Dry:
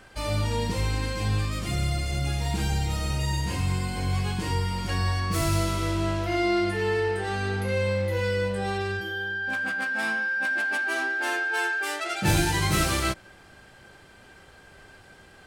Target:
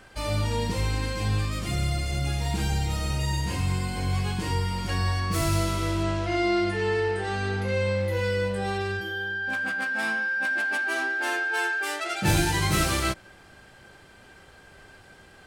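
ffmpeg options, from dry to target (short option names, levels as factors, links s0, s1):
-filter_complex "[0:a]asettb=1/sr,asplit=3[s0][s1][s2];[s0]atrim=end=6.034[s3];[s1]atrim=start=6.03:end=8.01,asetpts=PTS-STARTPTS,afade=t=in:d=0.004:c=qsin,afade=t=out:st=1.976:d=0.004:c=qsin,lowpass=f=9100:w=0.5412,lowpass=f=9100:w=1.3066[s4];[s2]atrim=start=8.006[s5];[s3][s4]acrossfade=d=0.004:c1=hsin:c2=qsin[s6];[s6][s5]acrossfade=d=0.004:c1=qsin:c2=hsin"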